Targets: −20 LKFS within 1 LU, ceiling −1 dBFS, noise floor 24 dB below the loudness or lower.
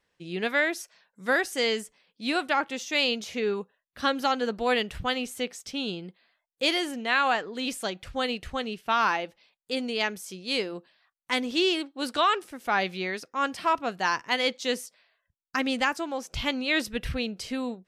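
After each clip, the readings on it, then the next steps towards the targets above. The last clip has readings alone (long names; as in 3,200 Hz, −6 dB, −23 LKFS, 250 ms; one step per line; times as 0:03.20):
integrated loudness −28.0 LKFS; sample peak −10.0 dBFS; target loudness −20.0 LKFS
→ level +8 dB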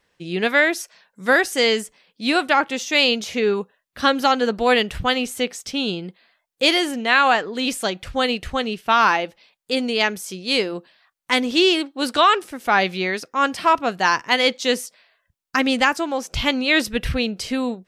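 integrated loudness −20.0 LKFS; sample peak −2.0 dBFS; background noise floor −74 dBFS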